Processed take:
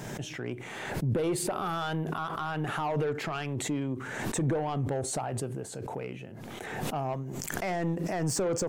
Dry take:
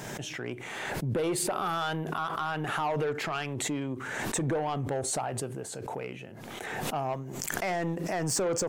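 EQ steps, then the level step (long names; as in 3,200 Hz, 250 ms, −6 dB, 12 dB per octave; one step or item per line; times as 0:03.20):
low-shelf EQ 400 Hz +6.5 dB
−3.0 dB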